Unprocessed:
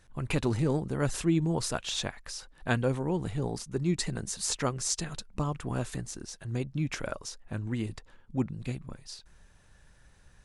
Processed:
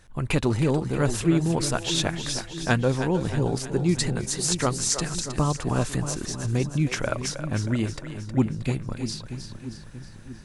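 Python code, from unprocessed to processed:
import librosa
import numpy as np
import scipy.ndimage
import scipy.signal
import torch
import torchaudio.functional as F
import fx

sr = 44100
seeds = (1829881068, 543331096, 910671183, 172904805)

p1 = fx.rider(x, sr, range_db=5, speed_s=0.5)
p2 = x + (p1 * 10.0 ** (0.5 / 20.0))
y = fx.echo_split(p2, sr, split_hz=370.0, low_ms=635, high_ms=315, feedback_pct=52, wet_db=-9.0)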